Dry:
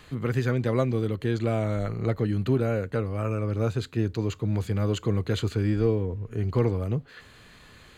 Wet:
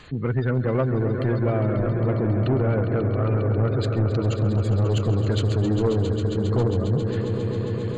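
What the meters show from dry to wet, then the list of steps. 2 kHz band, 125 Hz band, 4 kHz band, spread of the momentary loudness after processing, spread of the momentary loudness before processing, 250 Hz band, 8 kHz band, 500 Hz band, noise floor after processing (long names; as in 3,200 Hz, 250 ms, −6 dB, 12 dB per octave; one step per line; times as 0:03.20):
+1.5 dB, +5.5 dB, +2.5 dB, 3 LU, 4 LU, +3.5 dB, can't be measured, +4.0 dB, −27 dBFS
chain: gate on every frequency bin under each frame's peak −25 dB strong
echo that builds up and dies away 135 ms, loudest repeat 5, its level −12 dB
soft clipping −19.5 dBFS, distortion −14 dB
level +4.5 dB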